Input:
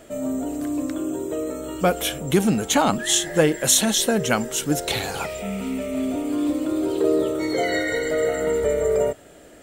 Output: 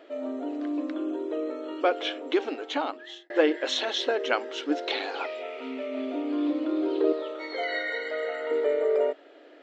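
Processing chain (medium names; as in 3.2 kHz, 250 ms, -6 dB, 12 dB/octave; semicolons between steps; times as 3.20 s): inverse Chebyshev low-pass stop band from 9.5 kHz, stop band 50 dB; 7.12–8.51 s: peaking EQ 330 Hz -14.5 dB 0.99 oct; brick-wall FIR high-pass 260 Hz; 2.31–3.30 s: fade out; trim -3.5 dB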